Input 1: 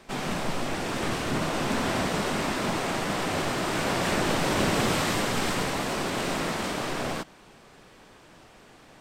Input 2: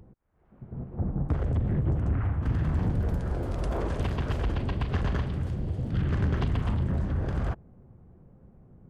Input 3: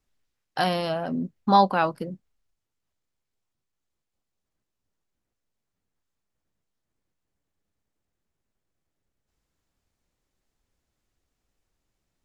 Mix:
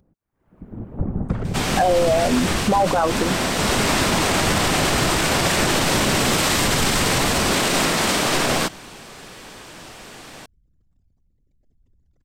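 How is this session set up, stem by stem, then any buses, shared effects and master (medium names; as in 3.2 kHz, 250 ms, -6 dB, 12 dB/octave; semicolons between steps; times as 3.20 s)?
-4.5 dB, 1.45 s, no send, none
-10.0 dB, 0.00 s, no send, whisper effect
+3.0 dB, 1.20 s, no send, resonances exaggerated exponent 3; rotary cabinet horn 0.9 Hz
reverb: none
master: level rider gain up to 15 dB; treble shelf 2.7 kHz +8 dB; peak limiter -9.5 dBFS, peak gain reduction 10 dB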